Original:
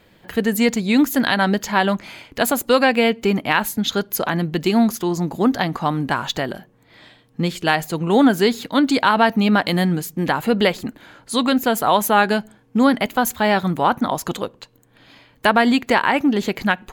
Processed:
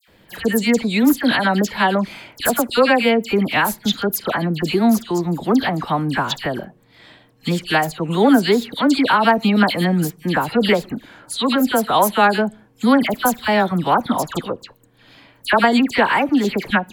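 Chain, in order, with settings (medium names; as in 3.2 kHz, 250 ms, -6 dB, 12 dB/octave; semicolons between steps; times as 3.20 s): band-stop 6.5 kHz, Q 22; phase dispersion lows, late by 83 ms, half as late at 2 kHz; trim +1 dB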